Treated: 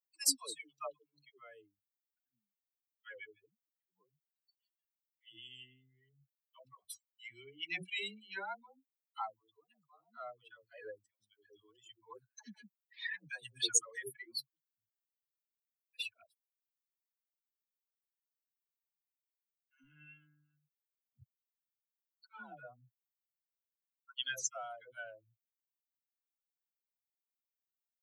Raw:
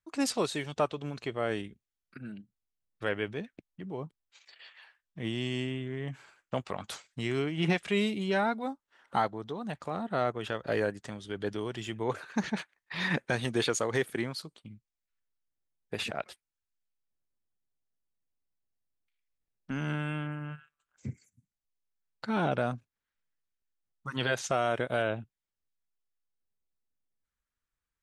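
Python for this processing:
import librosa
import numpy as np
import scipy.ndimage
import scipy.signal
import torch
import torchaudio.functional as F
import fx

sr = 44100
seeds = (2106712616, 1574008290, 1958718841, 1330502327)

y = fx.bin_expand(x, sr, power=3.0)
y = scipy.signal.lfilter([1.0, -0.97], [1.0], y)
y = fx.dispersion(y, sr, late='lows', ms=140.0, hz=440.0)
y = F.gain(torch.from_numpy(y), 9.5).numpy()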